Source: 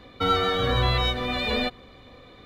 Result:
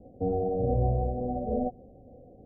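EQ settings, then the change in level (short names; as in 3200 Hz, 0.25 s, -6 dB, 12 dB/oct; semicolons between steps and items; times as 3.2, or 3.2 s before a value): rippled Chebyshev low-pass 760 Hz, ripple 3 dB; 0.0 dB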